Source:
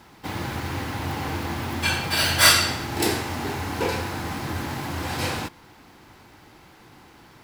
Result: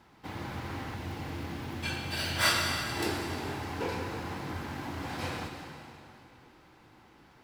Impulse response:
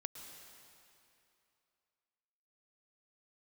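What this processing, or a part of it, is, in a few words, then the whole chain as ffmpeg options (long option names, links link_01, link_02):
swimming-pool hall: -filter_complex "[1:a]atrim=start_sample=2205[link_01];[0:a][link_01]afir=irnorm=-1:irlink=0,highshelf=frequency=5500:gain=-8,asettb=1/sr,asplit=3[link_02][link_03][link_04];[link_02]atrim=end=0.944[link_05];[link_03]atrim=start=0.94:end=2.36,asetpts=PTS-STARTPTS,afade=type=in:duration=0.004:curve=qsin,afade=type=out:start_time=1.416:duration=0.004:curve=qsin,equalizer=frequency=1100:width_type=o:width=1.6:gain=-5[link_06];[link_04]atrim=start=2.356[link_07];[link_05][link_06]acrossfade=duration=0.004:curve1=hsin:curve2=qsin[link_08];[link_08][link_07]acrossfade=duration=0.004:curve1=qsin:curve2=hsin,volume=-5dB"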